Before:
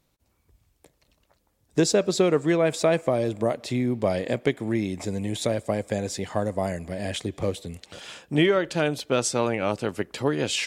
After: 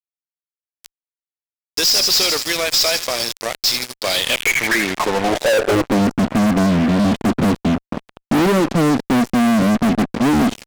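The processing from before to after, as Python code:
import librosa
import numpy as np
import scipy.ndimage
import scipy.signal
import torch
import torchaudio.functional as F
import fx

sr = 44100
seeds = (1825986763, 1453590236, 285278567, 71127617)

y = fx.filter_sweep_bandpass(x, sr, from_hz=5100.0, to_hz=230.0, start_s=3.96, end_s=6.06, q=6.6)
y = fx.echo_wet_highpass(y, sr, ms=81, feedback_pct=63, hz=1500.0, wet_db=-14.5)
y = fx.fuzz(y, sr, gain_db=58.0, gate_db=-57.0)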